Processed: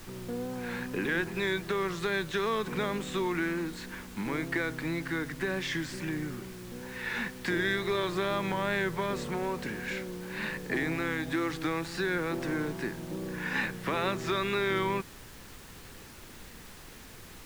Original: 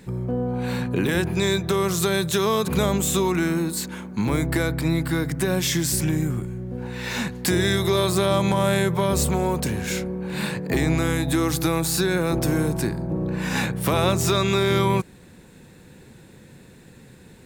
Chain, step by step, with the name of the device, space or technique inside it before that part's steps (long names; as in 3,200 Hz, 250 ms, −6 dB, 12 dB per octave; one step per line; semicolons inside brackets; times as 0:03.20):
horn gramophone (band-pass filter 230–3,300 Hz; parametric band 1,800 Hz +7 dB 0.59 octaves; tape wow and flutter; pink noise bed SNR 16 dB)
parametric band 650 Hz −5 dB 0.72 octaves
level −7 dB